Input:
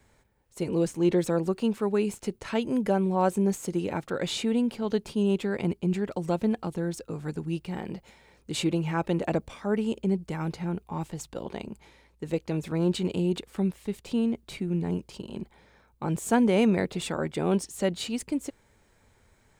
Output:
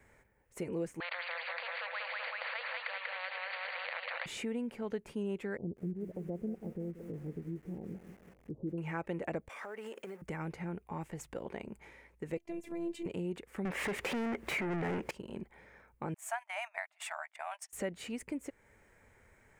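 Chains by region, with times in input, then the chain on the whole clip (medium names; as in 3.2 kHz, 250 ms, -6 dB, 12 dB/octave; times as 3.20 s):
1.00–4.26 s: brick-wall FIR band-pass 500–4700 Hz + feedback delay 190 ms, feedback 46%, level -7 dB + spectrum-flattening compressor 10:1
5.57–8.78 s: Gaussian low-pass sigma 16 samples + bit-crushed delay 183 ms, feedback 55%, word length 8-bit, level -13 dB
9.49–10.22 s: companding laws mixed up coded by mu + high-pass 530 Hz + compression, threshold -38 dBFS
12.37–13.06 s: robot voice 338 Hz + peaking EQ 1.4 kHz -13.5 dB 0.76 oct
13.65–15.11 s: treble shelf 4.7 kHz -10.5 dB + upward compressor, threshold -29 dBFS + overdrive pedal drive 33 dB, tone 5.2 kHz, clips at -17 dBFS
16.14–17.73 s: brick-wall FIR high-pass 600 Hz + gate -41 dBFS, range -20 dB
whole clip: graphic EQ 500/2000/4000 Hz +4/+10/-10 dB; compression 2:1, threshold -38 dBFS; trim -3.5 dB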